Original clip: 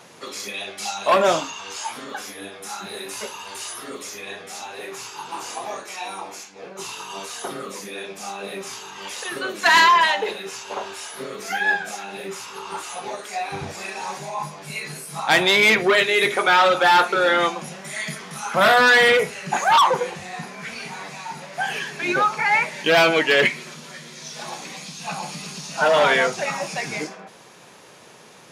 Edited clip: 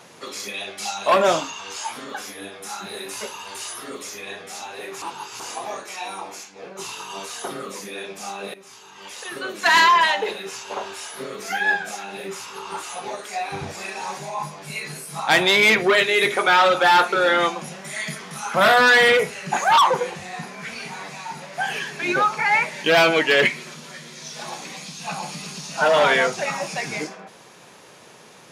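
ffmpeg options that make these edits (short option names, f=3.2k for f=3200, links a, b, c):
-filter_complex "[0:a]asplit=4[a][b][c][d];[a]atrim=end=5.022[e];[b]atrim=start=5.018:end=5.402,asetpts=PTS-STARTPTS,areverse[f];[c]atrim=start=5.398:end=8.54,asetpts=PTS-STARTPTS,afade=t=out:st=3.138:d=0.004:c=hsin:silence=0.158489[g];[d]atrim=start=8.54,asetpts=PTS-STARTPTS,afade=t=in:d=1.78:c=qsin:silence=0.158489[h];[e][f]acrossfade=d=0.004:c1=hsin:c2=hsin[i];[g][h]concat=n=2:v=0:a=1[j];[i][j]acrossfade=d=0.004:c1=hsin:c2=hsin"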